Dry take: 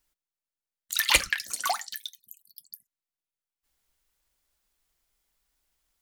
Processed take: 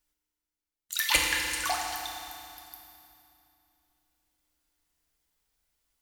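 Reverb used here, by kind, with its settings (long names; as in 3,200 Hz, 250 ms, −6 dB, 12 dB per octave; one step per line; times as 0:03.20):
feedback delay network reverb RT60 2.7 s, low-frequency decay 1.45×, high-frequency decay 0.9×, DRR −0.5 dB
level −4.5 dB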